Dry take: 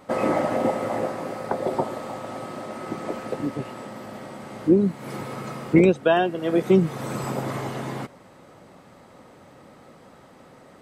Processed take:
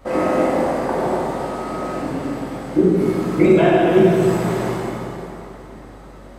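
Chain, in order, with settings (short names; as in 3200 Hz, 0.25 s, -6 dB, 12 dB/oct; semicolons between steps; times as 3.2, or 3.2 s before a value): hum 60 Hz, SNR 25 dB; granular stretch 0.59×, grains 38 ms; plate-style reverb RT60 3.2 s, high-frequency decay 0.75×, DRR -7.5 dB; gain -1 dB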